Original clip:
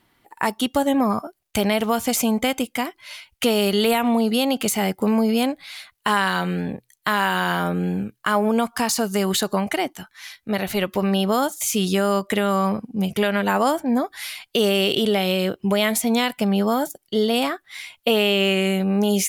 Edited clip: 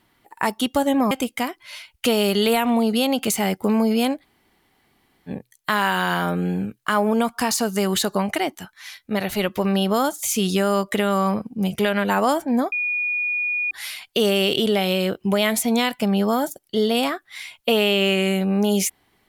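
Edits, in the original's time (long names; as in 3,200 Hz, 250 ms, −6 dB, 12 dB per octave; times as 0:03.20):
0:01.11–0:02.49: remove
0:05.60–0:06.67: fill with room tone, crossfade 0.06 s
0:14.10: insert tone 2,450 Hz −20.5 dBFS 0.99 s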